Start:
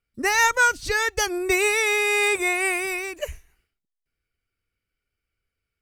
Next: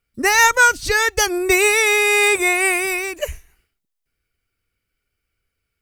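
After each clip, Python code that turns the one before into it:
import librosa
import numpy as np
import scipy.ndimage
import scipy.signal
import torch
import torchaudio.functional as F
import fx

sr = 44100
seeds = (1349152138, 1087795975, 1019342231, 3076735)

y = fx.high_shelf(x, sr, hz=8900.0, db=4.5)
y = y * librosa.db_to_amplitude(5.5)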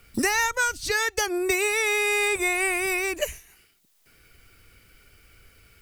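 y = fx.band_squash(x, sr, depth_pct=100)
y = y * librosa.db_to_amplitude(-8.5)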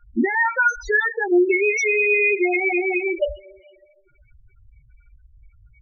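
y = fx.rev_double_slope(x, sr, seeds[0], early_s=0.3, late_s=2.1, knee_db=-18, drr_db=3.5)
y = fx.spec_topn(y, sr, count=4)
y = y * librosa.db_to_amplitude(6.0)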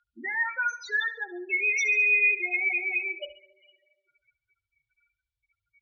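y = fx.bandpass_q(x, sr, hz=3500.0, q=2.3)
y = fx.echo_feedback(y, sr, ms=70, feedback_pct=52, wet_db=-16.5)
y = y * librosa.db_to_amplitude(4.0)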